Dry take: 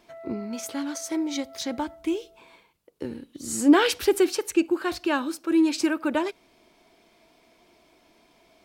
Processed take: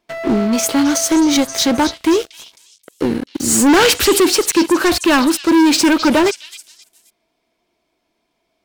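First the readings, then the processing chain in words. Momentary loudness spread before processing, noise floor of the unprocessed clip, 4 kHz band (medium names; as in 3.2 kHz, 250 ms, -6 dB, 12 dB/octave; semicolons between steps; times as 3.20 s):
15 LU, -62 dBFS, +15.0 dB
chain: waveshaping leveller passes 5; repeats whose band climbs or falls 264 ms, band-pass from 4 kHz, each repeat 0.7 oct, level -8 dB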